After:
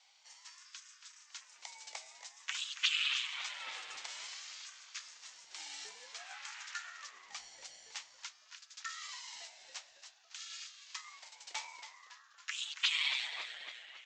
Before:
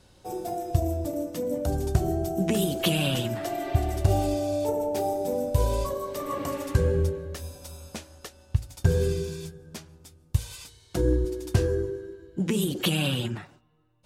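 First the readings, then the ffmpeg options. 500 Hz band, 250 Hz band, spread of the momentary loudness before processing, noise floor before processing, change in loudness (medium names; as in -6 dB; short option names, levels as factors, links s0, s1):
-38.5 dB, under -40 dB, 15 LU, -58 dBFS, -12.0 dB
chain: -filter_complex "[0:a]asuperpass=centerf=3200:order=20:qfactor=0.54,asplit=7[s0][s1][s2][s3][s4][s5][s6];[s1]adelay=278,afreqshift=-120,volume=0.299[s7];[s2]adelay=556,afreqshift=-240,volume=0.168[s8];[s3]adelay=834,afreqshift=-360,volume=0.0933[s9];[s4]adelay=1112,afreqshift=-480,volume=0.0525[s10];[s5]adelay=1390,afreqshift=-600,volume=0.0295[s11];[s6]adelay=1668,afreqshift=-720,volume=0.0164[s12];[s0][s7][s8][s9][s10][s11][s12]amix=inputs=7:normalize=0,aeval=exprs='val(0)*sin(2*PI*440*n/s+440*0.6/0.52*sin(2*PI*0.52*n/s))':c=same,volume=1.12"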